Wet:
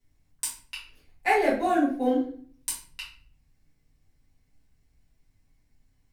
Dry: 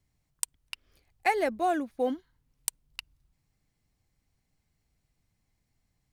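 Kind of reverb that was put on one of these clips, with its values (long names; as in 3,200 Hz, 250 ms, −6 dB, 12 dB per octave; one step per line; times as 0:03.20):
rectangular room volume 50 cubic metres, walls mixed, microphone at 2 metres
level −6 dB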